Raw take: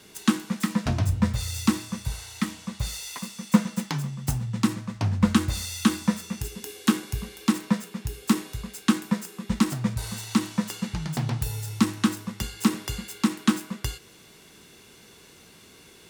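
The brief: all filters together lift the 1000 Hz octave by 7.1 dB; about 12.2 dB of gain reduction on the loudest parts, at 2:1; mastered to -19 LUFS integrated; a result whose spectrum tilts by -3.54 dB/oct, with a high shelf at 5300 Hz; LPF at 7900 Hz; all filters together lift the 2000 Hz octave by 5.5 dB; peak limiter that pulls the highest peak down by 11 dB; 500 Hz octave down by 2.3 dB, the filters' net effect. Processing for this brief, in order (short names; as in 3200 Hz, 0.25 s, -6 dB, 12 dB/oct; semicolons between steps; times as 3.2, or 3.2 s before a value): LPF 7900 Hz; bell 500 Hz -5.5 dB; bell 1000 Hz +8 dB; bell 2000 Hz +3.5 dB; high shelf 5300 Hz +9 dB; compressor 2:1, threshold -35 dBFS; gain +18 dB; limiter -5 dBFS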